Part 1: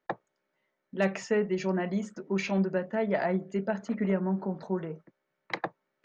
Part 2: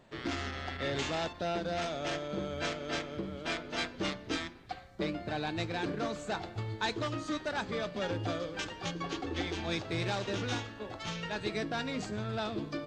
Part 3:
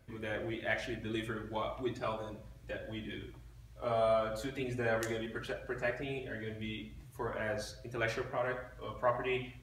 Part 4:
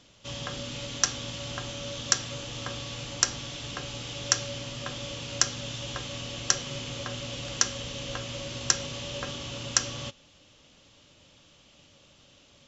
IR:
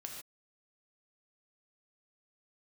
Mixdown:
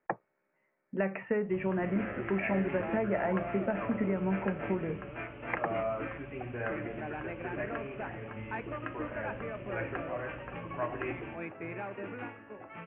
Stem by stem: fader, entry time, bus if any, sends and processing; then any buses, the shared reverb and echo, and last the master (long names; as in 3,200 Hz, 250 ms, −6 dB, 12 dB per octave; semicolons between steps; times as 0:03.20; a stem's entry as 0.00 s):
+2.0 dB, 0.00 s, no send, downward compressor 6 to 1, threshold −29 dBFS, peak gain reduction 8 dB
−4.5 dB, 1.70 s, no send, high-pass filter 170 Hz
−4.0 dB, 1.75 s, no send, no processing
−9.0 dB, 1.25 s, no send, no processing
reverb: not used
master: Butterworth low-pass 2,600 Hz 72 dB per octave